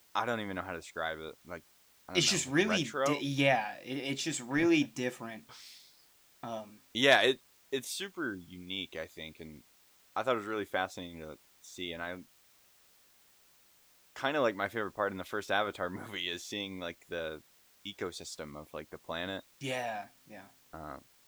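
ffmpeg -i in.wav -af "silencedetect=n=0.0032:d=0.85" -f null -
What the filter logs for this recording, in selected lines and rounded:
silence_start: 12.23
silence_end: 14.16 | silence_duration: 1.93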